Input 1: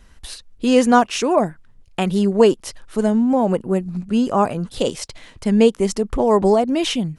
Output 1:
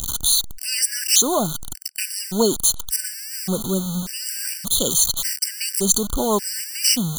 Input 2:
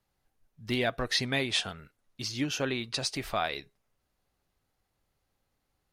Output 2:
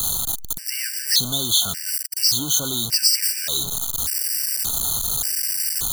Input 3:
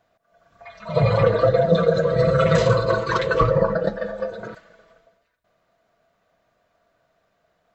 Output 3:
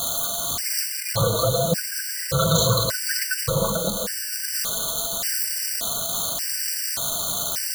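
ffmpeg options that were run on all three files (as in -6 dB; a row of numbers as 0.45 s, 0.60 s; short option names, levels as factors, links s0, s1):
-af "aeval=exprs='val(0)+0.5*0.0668*sgn(val(0))':c=same,equalizer=f=480:w=1.1:g=-6,aexciter=amount=4.1:drive=8.3:freq=3700,afftfilt=real='re*gt(sin(2*PI*0.86*pts/sr)*(1-2*mod(floor(b*sr/1024/1500),2)),0)':imag='im*gt(sin(2*PI*0.86*pts/sr)*(1-2*mod(floor(b*sr/1024/1500),2)),0)':win_size=1024:overlap=0.75,volume=0.794"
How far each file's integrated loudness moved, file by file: -1.5 LU, +11.5 LU, -3.0 LU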